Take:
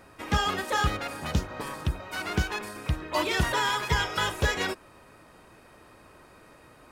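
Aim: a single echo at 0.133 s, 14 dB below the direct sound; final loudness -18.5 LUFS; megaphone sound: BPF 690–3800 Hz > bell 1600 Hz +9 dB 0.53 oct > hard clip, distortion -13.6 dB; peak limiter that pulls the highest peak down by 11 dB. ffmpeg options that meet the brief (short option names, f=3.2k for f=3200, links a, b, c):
-af "alimiter=limit=-21.5dB:level=0:latency=1,highpass=690,lowpass=3.8k,equalizer=f=1.6k:t=o:w=0.53:g=9,aecho=1:1:133:0.2,asoftclip=type=hard:threshold=-25dB,volume=12.5dB"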